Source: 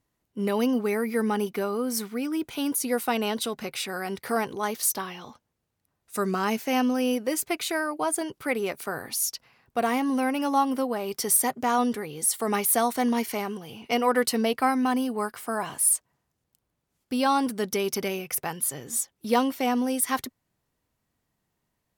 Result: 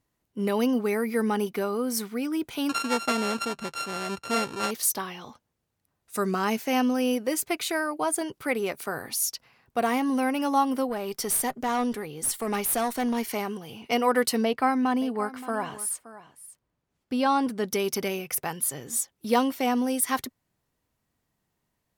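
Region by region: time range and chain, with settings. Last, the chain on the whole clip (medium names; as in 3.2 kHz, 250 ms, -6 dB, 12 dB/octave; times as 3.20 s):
2.69–4.71 s: sorted samples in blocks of 32 samples + low-pass 9.3 kHz
10.89–13.26 s: valve stage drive 20 dB, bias 0.3 + tape noise reduction on one side only decoder only
14.44–17.65 s: low-pass 3.4 kHz 6 dB/octave + delay 573 ms -16.5 dB
whole clip: none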